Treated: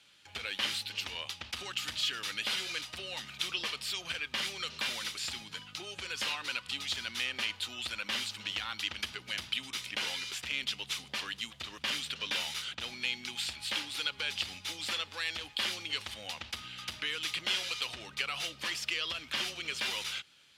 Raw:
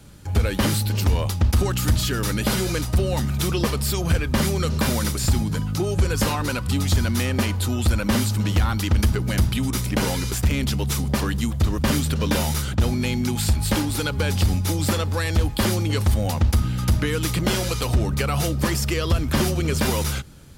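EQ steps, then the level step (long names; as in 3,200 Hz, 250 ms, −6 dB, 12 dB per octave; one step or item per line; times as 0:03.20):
resonant band-pass 3,000 Hz, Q 2
0.0 dB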